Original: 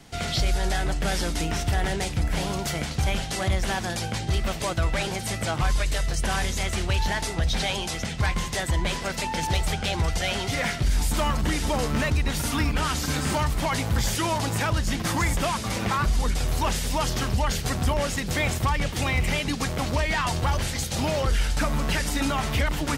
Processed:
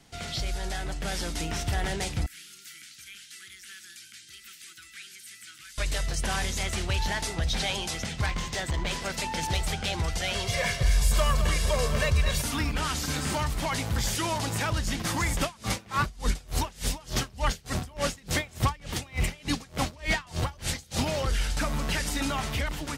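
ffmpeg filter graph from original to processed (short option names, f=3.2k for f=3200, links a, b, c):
-filter_complex "[0:a]asettb=1/sr,asplit=3[a][b][c];[a]atrim=end=2.264[d];[b]atrim=start=2.26:end=5.78,asetpts=PTS-STARTPTS,afade=t=in:d=0.004:c=qsin,afade=t=out:st=3.516:d=0.004:c=qsin,acrossover=split=2900[e][f];[f]acompressor=threshold=-44dB:ratio=4:attack=1:release=60[g];[e][g]amix=inputs=2:normalize=0,asuperstop=centerf=700:order=12:qfactor=0.73,aderivative[h];[c]atrim=start=5.776[i];[d][h]acrossfade=d=0.004:c1=hsin:c2=qsin[j];[j][i]acrossfade=d=0.004:c1=qsin:c2=hsin,asettb=1/sr,asplit=3[k][l][m];[k]atrim=end=8.264[n];[l]atrim=start=8.26:end=8.91,asetpts=PTS-STARTPTS,afade=t=in:d=0.004:c=qsin,afade=t=out:st=0.646:d=0.004:c=qsin,equalizer=f=11k:w=1.4:g=-10,aeval=exprs='clip(val(0),-1,0.0708)':c=same[o];[m]atrim=start=8.906[p];[n][o]acrossfade=d=0.004:c1=hsin:c2=qsin[q];[q][p]acrossfade=d=0.004:c1=qsin:c2=hsin,asettb=1/sr,asplit=3[r][s][t];[r]atrim=end=10.344[u];[s]atrim=start=10.34:end=12.42,asetpts=PTS-STARTPTS,afade=t=in:d=0.004:c=qsin,afade=t=out:st=2.076:d=0.004:c=qsin,aecho=1:1:1.8:0.86,atrim=end_sample=91728,aecho=1:1:214:0.316,atrim=end_sample=91728[v];[t]atrim=start=12.416[w];[u][v]acrossfade=d=0.004:c1=hsin:c2=qsin[x];[x][w]acrossfade=d=0.004:c1=qsin:c2=hsin,asettb=1/sr,asplit=3[y][z][aa];[y]atrim=end=15.414[ab];[z]atrim=start=15.41:end=21.06,asetpts=PTS-STARTPTS,afade=t=in:d=0.004:c=qsin,afade=t=out:st=5.646:d=0.004:c=qsin,acontrast=28,aeval=exprs='val(0)*pow(10,-28*(0.5-0.5*cos(2*PI*3.4*n/s))/20)':c=same[ac];[aa]atrim=start=21.056[ad];[ab][ac]acrossfade=d=0.004:c1=hsin:c2=qsin[ae];[ae][ad]acrossfade=d=0.004:c1=qsin:c2=hsin,equalizer=f=6.3k:w=0.32:g=3,dynaudnorm=f=860:g=3:m=4.5dB,volume=-8.5dB"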